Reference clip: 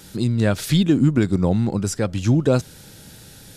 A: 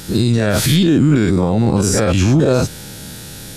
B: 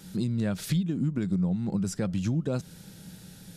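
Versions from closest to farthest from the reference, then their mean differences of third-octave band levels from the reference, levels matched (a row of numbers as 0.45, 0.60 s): B, A; 3.5, 6.5 dB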